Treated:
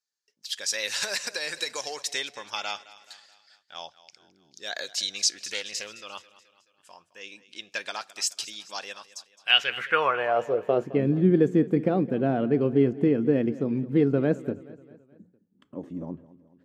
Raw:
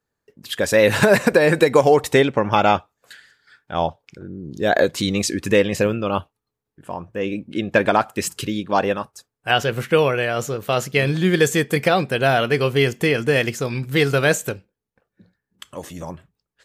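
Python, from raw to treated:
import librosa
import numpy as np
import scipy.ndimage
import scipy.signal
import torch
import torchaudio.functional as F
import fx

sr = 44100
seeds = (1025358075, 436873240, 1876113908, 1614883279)

y = fx.filter_sweep_bandpass(x, sr, from_hz=5400.0, to_hz=260.0, start_s=9.17, end_s=10.99, q=2.5)
y = fx.echo_feedback(y, sr, ms=214, feedback_pct=51, wet_db=-18.0)
y = fx.doppler_dist(y, sr, depth_ms=0.15, at=(5.24, 5.87))
y = y * librosa.db_to_amplitude(4.5)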